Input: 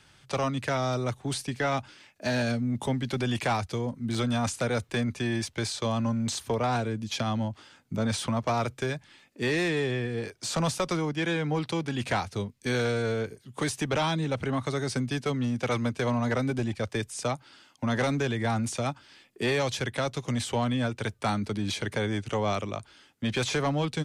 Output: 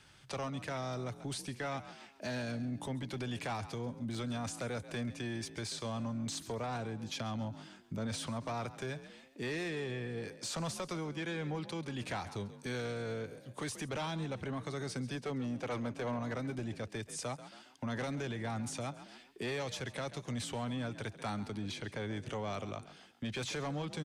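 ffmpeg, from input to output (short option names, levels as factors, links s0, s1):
-filter_complex "[0:a]asettb=1/sr,asplit=3[s0][s1][s2];[s0]atrim=end=15.154[s3];[s1]atrim=start=15.15:end=16.19,asetpts=PTS-STARTPTS,afade=t=in:d=0.004:c=qsin,afade=t=out:st=1.036:d=0.004:c=qsin,equalizer=f=620:t=o:w=2.8:g=6.5[s4];[s2]atrim=start=16.186[s5];[s3][s4]acrossfade=d=0.004:c1=hsin:c2=qsin[s6];[s6][s5]acrossfade=d=0.004:c1=qsin:c2=hsin,asoftclip=type=tanh:threshold=0.106,asplit=4[s7][s8][s9][s10];[s8]adelay=136,afreqshift=44,volume=0.15[s11];[s9]adelay=272,afreqshift=88,volume=0.0537[s12];[s10]adelay=408,afreqshift=132,volume=0.0195[s13];[s7][s11][s12][s13]amix=inputs=4:normalize=0,alimiter=level_in=1.68:limit=0.0631:level=0:latency=1:release=249,volume=0.596,asettb=1/sr,asplit=3[s14][s15][s16];[s14]atrim=end=21.594[s17];[s15]atrim=start=21.59:end=22.17,asetpts=PTS-STARTPTS,afade=t=in:d=0.004:c=qsin,afade=t=out:st=0.576:d=0.004:c=qsin,highshelf=f=6600:g=-7.5[s18];[s16]atrim=start=22.166[s19];[s17][s18]acrossfade=d=0.004:c1=hsin:c2=qsin[s20];[s20][s19]acrossfade=d=0.004:c1=qsin:c2=hsin,volume=0.708"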